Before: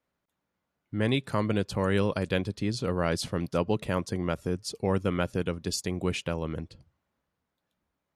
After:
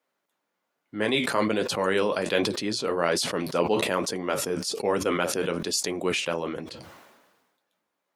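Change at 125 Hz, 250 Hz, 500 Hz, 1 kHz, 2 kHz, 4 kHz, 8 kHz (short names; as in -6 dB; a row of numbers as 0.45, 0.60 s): -7.5, +0.5, +4.5, +5.5, +6.5, +7.5, +8.5 dB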